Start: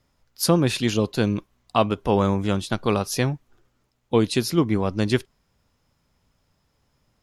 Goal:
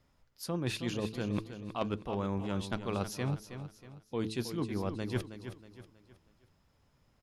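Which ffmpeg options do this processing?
ffmpeg -i in.wav -af "bass=frequency=250:gain=1,treble=frequency=4000:gain=-4,bandreject=frequency=109.4:width_type=h:width=4,bandreject=frequency=218.8:width_type=h:width=4,bandreject=frequency=328.2:width_type=h:width=4,bandreject=frequency=437.6:width_type=h:width=4,areverse,acompressor=threshold=-28dB:ratio=12,areverse,aeval=exprs='0.141*(cos(1*acos(clip(val(0)/0.141,-1,1)))-cos(1*PI/2))+0.02*(cos(3*acos(clip(val(0)/0.141,-1,1)))-cos(3*PI/2))+0.00447*(cos(5*acos(clip(val(0)/0.141,-1,1)))-cos(5*PI/2))':channel_layout=same,aecho=1:1:319|638|957|1276:0.316|0.123|0.0481|0.0188" out.wav

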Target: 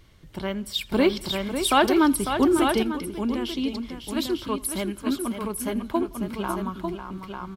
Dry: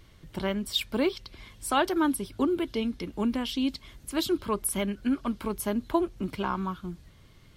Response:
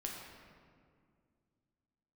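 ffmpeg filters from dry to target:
-filter_complex "[0:a]asplit=2[link_01][link_02];[link_02]aecho=0:1:549|897:0.376|0.501[link_03];[link_01][link_03]amix=inputs=2:normalize=0,asettb=1/sr,asplit=3[link_04][link_05][link_06];[link_04]atrim=end=0.914[link_07];[link_05]atrim=start=0.91:end=2.83,asetpts=PTS-STARTPTS,afade=type=in:duration=0.004:curve=qsin,afade=type=out:start_time=1.916:duration=0.004:curve=qsin,acontrast=51[link_08];[link_06]atrim=start=2.826[link_09];[link_07][link_08]acrossfade=duration=0.004:curve1=hsin:curve2=qsin[link_10];[link_10][link_09]acrossfade=duration=0.004:curve1=qsin:curve2=hsin,asplit=2[link_11][link_12];[link_12]aecho=0:1:83|166|249:0.0631|0.0341|0.0184[link_13];[link_11][link_13]amix=inputs=2:normalize=0"

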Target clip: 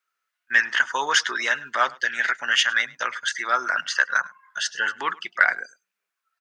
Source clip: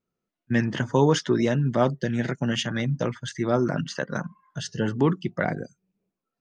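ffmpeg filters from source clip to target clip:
ffmpeg -i in.wav -filter_complex "[0:a]highpass=frequency=1500:width_type=q:width=2.4,asplit=2[link_01][link_02];[link_02]asoftclip=type=tanh:threshold=-17dB,volume=-10.5dB[link_03];[link_01][link_03]amix=inputs=2:normalize=0,aecho=1:1:104:0.0708,volume=5dB" out.wav

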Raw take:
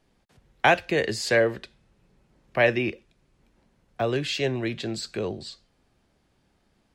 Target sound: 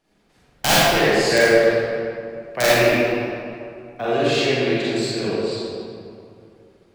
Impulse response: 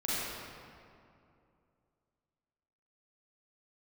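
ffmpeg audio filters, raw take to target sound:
-filter_complex "[0:a]aeval=exprs='0.531*(cos(1*acos(clip(val(0)/0.531,-1,1)))-cos(1*PI/2))+0.0133*(cos(5*acos(clip(val(0)/0.531,-1,1)))-cos(5*PI/2))':channel_layout=same,lowshelf=frequency=170:gain=-9,aeval=exprs='(mod(3.35*val(0)+1,2)-1)/3.35':channel_layout=same[link_01];[1:a]atrim=start_sample=2205[link_02];[link_01][link_02]afir=irnorm=-1:irlink=0"

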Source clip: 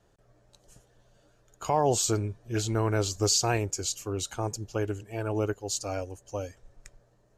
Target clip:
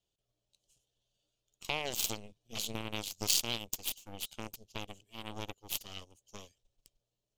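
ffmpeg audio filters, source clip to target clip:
ffmpeg -i in.wav -af "aeval=exprs='0.224*(cos(1*acos(clip(val(0)/0.224,-1,1)))-cos(1*PI/2))+0.0794*(cos(3*acos(clip(val(0)/0.224,-1,1)))-cos(3*PI/2))+0.0251*(cos(4*acos(clip(val(0)/0.224,-1,1)))-cos(4*PI/2))':channel_layout=same,acompressor=threshold=-36dB:ratio=2.5,highshelf=frequency=2300:width_type=q:width=3:gain=10" out.wav

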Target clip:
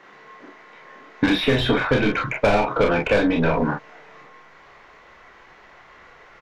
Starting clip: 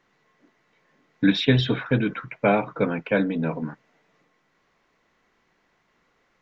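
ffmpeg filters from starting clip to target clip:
ffmpeg -i in.wav -filter_complex "[0:a]asplit=2[link_01][link_02];[link_02]highpass=frequency=720:poles=1,volume=23dB,asoftclip=type=tanh:threshold=-5.5dB[link_03];[link_01][link_03]amix=inputs=2:normalize=0,lowpass=frequency=1400:poles=1,volume=-6dB,asubboost=boost=9:cutoff=75,asplit=2[link_04][link_05];[link_05]aecho=0:1:29|43:0.668|0.501[link_06];[link_04][link_06]amix=inputs=2:normalize=0,acrossover=split=850|2600[link_07][link_08][link_09];[link_07]acompressor=threshold=-22dB:ratio=4[link_10];[link_08]acompressor=threshold=-35dB:ratio=4[link_11];[link_09]acompressor=threshold=-35dB:ratio=4[link_12];[link_10][link_11][link_12]amix=inputs=3:normalize=0,volume=5dB" out.wav

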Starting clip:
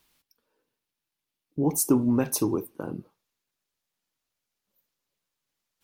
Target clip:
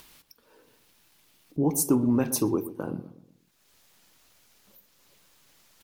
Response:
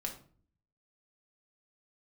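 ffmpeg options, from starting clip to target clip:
-filter_complex "[0:a]asplit=2[link_01][link_02];[link_02]alimiter=limit=-17.5dB:level=0:latency=1:release=162,volume=-1dB[link_03];[link_01][link_03]amix=inputs=2:normalize=0,acompressor=mode=upward:threshold=-38dB:ratio=2.5,asplit=2[link_04][link_05];[link_05]adelay=122,lowpass=frequency=1000:poles=1,volume=-13dB,asplit=2[link_06][link_07];[link_07]adelay=122,lowpass=frequency=1000:poles=1,volume=0.45,asplit=2[link_08][link_09];[link_09]adelay=122,lowpass=frequency=1000:poles=1,volume=0.45,asplit=2[link_10][link_11];[link_11]adelay=122,lowpass=frequency=1000:poles=1,volume=0.45[link_12];[link_04][link_06][link_08][link_10][link_12]amix=inputs=5:normalize=0,volume=-4.5dB"

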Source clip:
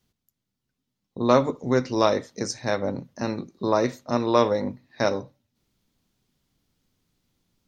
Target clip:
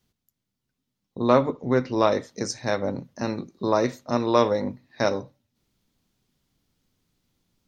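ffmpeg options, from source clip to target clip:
ffmpeg -i in.wav -filter_complex "[0:a]asettb=1/sr,asplit=3[link_01][link_02][link_03];[link_01]atrim=end=1.294[link_04];[link_02]atrim=start=1.29:end=2.12,asetpts=PTS-STARTPTS,afade=type=in:duration=0.004:curve=qsin,afade=type=out:start_time=0.826:duration=0.004:curve=qsin,lowpass=3600[link_05];[link_03]atrim=start=2.116[link_06];[link_04][link_05]acrossfade=duration=0.004:curve1=hsin:curve2=qsin[link_07];[link_07][link_06]acrossfade=duration=0.004:curve1=qsin:curve2=hsin" out.wav

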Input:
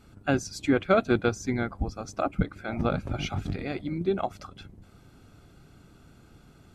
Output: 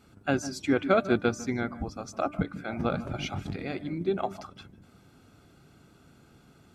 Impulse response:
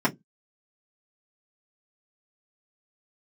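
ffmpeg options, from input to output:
-filter_complex "[0:a]highpass=frequency=120:poles=1,bandreject=frequency=297.9:width_type=h:width=4,bandreject=frequency=595.8:width_type=h:width=4,bandreject=frequency=893.7:width_type=h:width=4,bandreject=frequency=1191.6:width_type=h:width=4,bandreject=frequency=1489.5:width_type=h:width=4,bandreject=frequency=1787.4:width_type=h:width=4,asplit=2[link_01][link_02];[1:a]atrim=start_sample=2205,adelay=146[link_03];[link_02][link_03]afir=irnorm=-1:irlink=0,volume=-30.5dB[link_04];[link_01][link_04]amix=inputs=2:normalize=0,volume=-1dB"

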